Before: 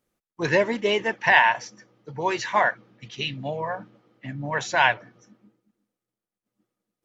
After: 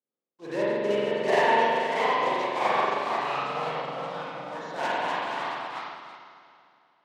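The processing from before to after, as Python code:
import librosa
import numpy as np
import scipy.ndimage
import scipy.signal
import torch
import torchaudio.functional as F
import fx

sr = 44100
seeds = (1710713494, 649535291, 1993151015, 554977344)

y = fx.block_float(x, sr, bits=3)
y = scipy.signal.sosfilt(scipy.signal.butter(2, 260.0, 'highpass', fs=sr, output='sos'), y)
y = fx.peak_eq(y, sr, hz=1900.0, db=-8.5, octaves=1.9)
y = fx.echo_multitap(y, sr, ms=(462, 477), db=(-18.0, -7.5))
y = fx.rev_spring(y, sr, rt60_s=3.0, pass_ms=(44,), chirp_ms=35, drr_db=-9.0)
y = fx.echo_pitch(y, sr, ms=779, semitones=2, count=3, db_per_echo=-3.0)
y = fx.air_absorb(y, sr, metres=120.0)
y = fx.upward_expand(y, sr, threshold_db=-30.0, expansion=1.5)
y = y * 10.0 ** (-8.0 / 20.0)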